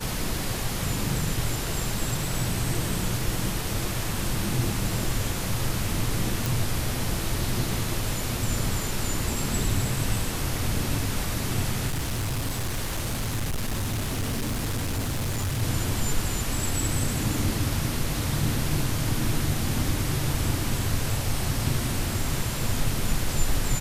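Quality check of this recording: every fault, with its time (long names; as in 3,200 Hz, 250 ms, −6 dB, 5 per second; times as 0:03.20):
0:06.46: click
0:11.87–0:15.63: clipping −24 dBFS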